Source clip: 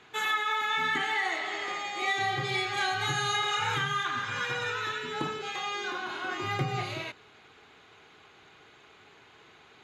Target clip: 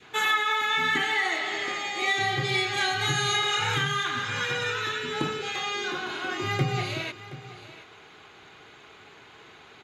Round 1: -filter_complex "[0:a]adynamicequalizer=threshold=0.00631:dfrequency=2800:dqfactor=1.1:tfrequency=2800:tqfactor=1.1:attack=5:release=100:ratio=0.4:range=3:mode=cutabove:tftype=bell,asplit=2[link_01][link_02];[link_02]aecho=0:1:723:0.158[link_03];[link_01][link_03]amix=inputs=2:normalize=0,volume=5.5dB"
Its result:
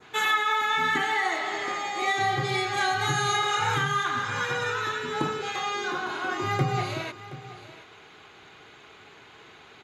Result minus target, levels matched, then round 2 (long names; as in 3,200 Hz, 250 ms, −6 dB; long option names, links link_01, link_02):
1,000 Hz band +3.5 dB
-filter_complex "[0:a]adynamicequalizer=threshold=0.00631:dfrequency=1000:dqfactor=1.1:tfrequency=1000:tqfactor=1.1:attack=5:release=100:ratio=0.4:range=3:mode=cutabove:tftype=bell,asplit=2[link_01][link_02];[link_02]aecho=0:1:723:0.158[link_03];[link_01][link_03]amix=inputs=2:normalize=0,volume=5.5dB"